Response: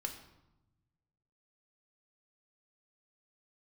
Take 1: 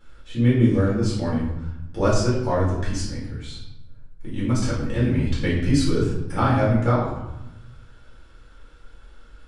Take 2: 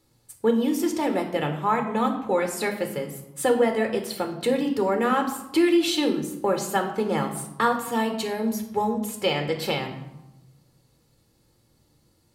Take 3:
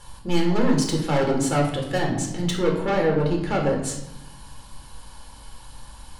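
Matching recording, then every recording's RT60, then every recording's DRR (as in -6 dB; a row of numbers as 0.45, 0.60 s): 2; 0.90, 0.95, 0.95 s; -8.5, 4.0, -0.5 dB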